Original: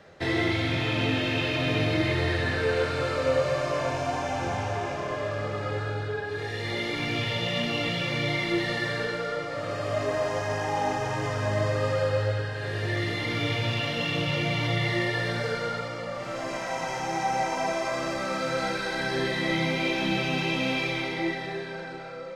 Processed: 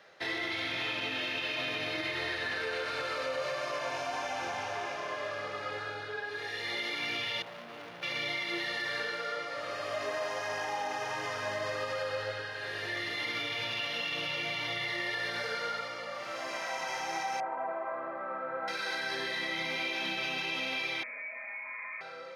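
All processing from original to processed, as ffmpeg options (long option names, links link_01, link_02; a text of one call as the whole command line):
ffmpeg -i in.wav -filter_complex "[0:a]asettb=1/sr,asplit=3[link_01][link_02][link_03];[link_01]atrim=end=7.424[link_04];[link_02]atrim=start=7.42:end=8.03,asetpts=PTS-STARTPTS,afade=type=in:duration=0.004:curve=qsin,afade=type=out:start_time=0.606:duration=0.004:curve=qsin,lowpass=1100,asoftclip=type=hard:threshold=-36.5dB[link_05];[link_03]atrim=start=8.026[link_06];[link_04][link_05]acrossfade=duration=0.004:curve1=hsin:curve2=qsin[link_07];[link_07][link_06]acrossfade=duration=0.004:curve1=qsin:curve2=hsin,asettb=1/sr,asplit=3[link_08][link_09][link_10];[link_08]atrim=end=17.404[link_11];[link_09]atrim=start=17.4:end=18.68,asetpts=PTS-STARTPTS,afade=type=in:duration=0.004:curve=qsin,afade=type=out:start_time=1.276:duration=0.004:curve=qsin,lowpass=frequency=1400:width=0.5412,lowpass=frequency=1400:width=1.3066,lowshelf=frequency=210:gain=-7.5[link_12];[link_10]atrim=start=18.676[link_13];[link_11][link_12]acrossfade=duration=0.004:curve1=hsin:curve2=qsin[link_14];[link_14][link_13]acrossfade=duration=0.004:curve1=qsin:curve2=hsin,asettb=1/sr,asplit=3[link_15][link_16][link_17];[link_15]atrim=end=21.034[link_18];[link_16]atrim=start=21.03:end=22.01,asetpts=PTS-STARTPTS,afade=type=in:duration=0.004:curve=qsin,afade=type=out:start_time=0.976:duration=0.004:curve=qsin,acompressor=threshold=-34dB:ratio=16:attack=3.2:release=140:knee=1:detection=peak,aeval=exprs='clip(val(0),-1,0.0178)':channel_layout=same,lowpass=frequency=2200:width_type=q:width=0.5098,lowpass=frequency=2200:width_type=q:width=0.6013,lowpass=frequency=2200:width_type=q:width=0.9,lowpass=frequency=2200:width_type=q:width=2.563,afreqshift=-2600[link_19];[link_17]atrim=start=22.006[link_20];[link_18][link_19]acrossfade=duration=0.004:curve1=hsin:curve2=qsin[link_21];[link_21][link_20]acrossfade=duration=0.004:curve1=qsin:curve2=hsin,highpass=frequency=1200:poles=1,equalizer=frequency=7800:width=3.5:gain=-9.5,alimiter=level_in=1.5dB:limit=-24dB:level=0:latency=1:release=58,volume=-1.5dB" out.wav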